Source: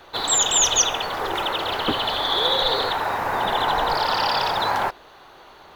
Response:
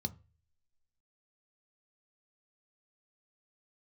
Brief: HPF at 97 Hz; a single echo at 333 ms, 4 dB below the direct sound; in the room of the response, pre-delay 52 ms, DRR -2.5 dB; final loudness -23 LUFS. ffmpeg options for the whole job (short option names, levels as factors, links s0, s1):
-filter_complex "[0:a]highpass=97,aecho=1:1:333:0.631,asplit=2[s0][s1];[1:a]atrim=start_sample=2205,adelay=52[s2];[s1][s2]afir=irnorm=-1:irlink=0,volume=1.41[s3];[s0][s3]amix=inputs=2:normalize=0,volume=0.376"